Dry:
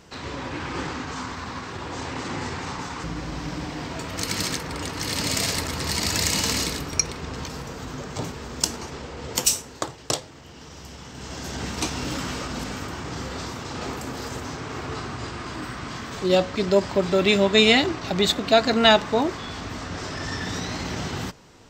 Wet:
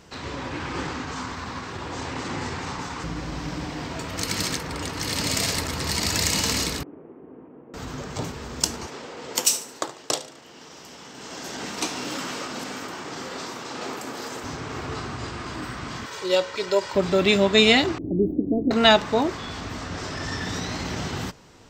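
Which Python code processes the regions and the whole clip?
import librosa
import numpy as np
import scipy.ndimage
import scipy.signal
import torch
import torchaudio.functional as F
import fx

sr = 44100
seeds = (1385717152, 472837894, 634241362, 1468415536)

y = fx.chain(x, sr, fx.delta_mod(bps=16000, step_db=-34.5),
    fx.ladder_bandpass(hz=380.0, resonance_pct=45),
    fx.low_shelf(hz=250.0, db=7.0), at=(6.83, 7.74))
y = fx.chain(y, sr, fx.highpass(hz=250.0, slope=12),
    fx.echo_feedback(ms=73, feedback_pct=41, wet_db=-15.5), at=(8.87, 14.44))
y = fx.chain(y, sr, fx.highpass(hz=680.0, slope=6),
    fx.comb(ms=2.1, depth=0.59), at=(16.06, 16.95))
y = fx.chain(y, sr, fx.cvsd(bps=64000),
    fx.cheby2_bandstop(low_hz=1600.0, high_hz=8500.0, order=4, stop_db=70),
    fx.peak_eq(hz=310.0, db=13.0, octaves=0.44), at=(17.98, 18.71))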